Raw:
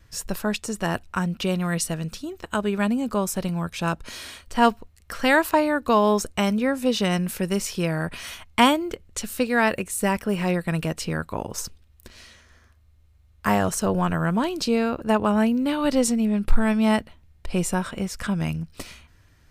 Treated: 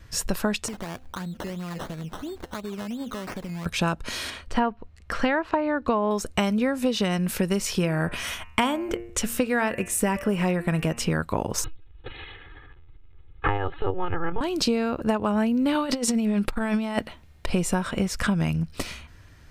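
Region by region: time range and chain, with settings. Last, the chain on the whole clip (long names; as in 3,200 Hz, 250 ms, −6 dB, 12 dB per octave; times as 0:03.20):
0:00.68–0:03.66: downward compressor 5 to 1, threshold −38 dBFS + hum removal 258.4 Hz, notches 3 + sample-and-hold swept by an LFO 15×, swing 60% 2.9 Hz
0:04.30–0:06.11: treble cut that deepens with the level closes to 2,000 Hz, closed at −13 dBFS + low-pass filter 3,100 Hz 6 dB per octave
0:07.77–0:11.12: parametric band 4,300 Hz −7.5 dB 0.31 octaves + hum removal 116.5 Hz, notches 25
0:11.64–0:14.41: linear-prediction vocoder at 8 kHz pitch kept + shaped tremolo saw up 8.3 Hz, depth 30% + comb filter 2.4 ms, depth 96%
0:15.75–0:17.50: low-shelf EQ 160 Hz −10.5 dB + compressor whose output falls as the input rises −27 dBFS, ratio −0.5
whole clip: high-shelf EQ 7,000 Hz −5 dB; downward compressor 12 to 1, threshold −26 dBFS; level +6.5 dB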